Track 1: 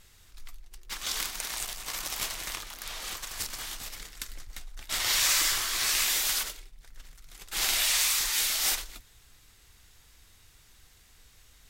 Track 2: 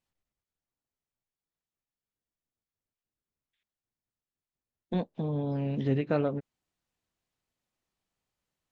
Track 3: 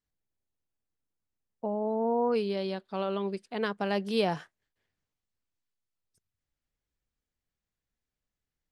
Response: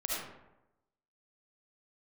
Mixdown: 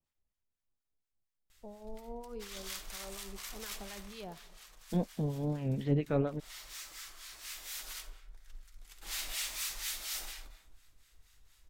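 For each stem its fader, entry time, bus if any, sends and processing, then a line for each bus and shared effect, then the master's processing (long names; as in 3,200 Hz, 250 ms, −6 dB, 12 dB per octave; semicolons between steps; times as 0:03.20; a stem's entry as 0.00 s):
0:03.69 −11.5 dB → 0:04.46 −21 dB → 0:07.30 −21 dB → 0:08.02 −11.5 dB, 1.50 s, send −3.5 dB, soft clipping −23.5 dBFS, distortion −13 dB; low-shelf EQ 340 Hz −4.5 dB
−1.5 dB, 0.00 s, no send, pitch vibrato 2.4 Hz 99 cents
−16.5 dB, 0.00 s, send −18.5 dB, no processing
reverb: on, RT60 0.95 s, pre-delay 30 ms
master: low-shelf EQ 69 Hz +11.5 dB; two-band tremolo in antiphase 4.2 Hz, depth 70%, crossover 970 Hz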